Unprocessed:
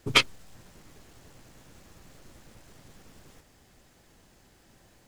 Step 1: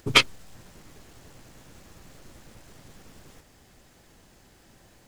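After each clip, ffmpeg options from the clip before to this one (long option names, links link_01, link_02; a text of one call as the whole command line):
ffmpeg -i in.wav -af "acompressor=mode=upward:threshold=-57dB:ratio=2.5,volume=3dB" out.wav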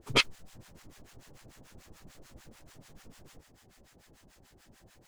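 ffmpeg -i in.wav -filter_complex "[0:a]acrossover=split=800[link_01][link_02];[link_01]aeval=exprs='val(0)*(1-1/2+1/2*cos(2*PI*6.8*n/s))':channel_layout=same[link_03];[link_02]aeval=exprs='val(0)*(1-1/2-1/2*cos(2*PI*6.8*n/s))':channel_layout=same[link_04];[link_03][link_04]amix=inputs=2:normalize=0" out.wav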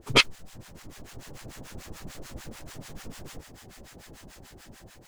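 ffmpeg -i in.wav -af "dynaudnorm=framelen=390:gausssize=5:maxgain=6.5dB,volume=5.5dB" out.wav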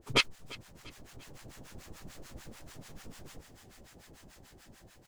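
ffmpeg -i in.wav -af "aecho=1:1:344|688|1032:0.0944|0.0434|0.02,volume=-7dB" out.wav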